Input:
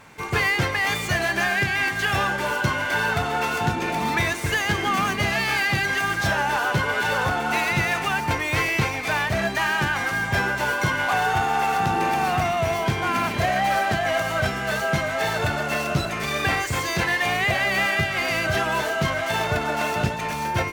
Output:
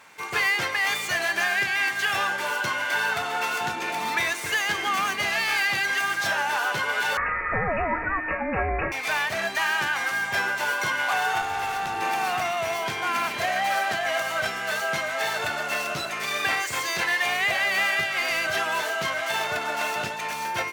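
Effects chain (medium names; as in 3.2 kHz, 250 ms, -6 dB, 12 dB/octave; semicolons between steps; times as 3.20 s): high-pass 890 Hz 6 dB/octave; 7.17–8.92 s: frequency inversion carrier 2.7 kHz; 11.41–12.02 s: valve stage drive 21 dB, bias 0.5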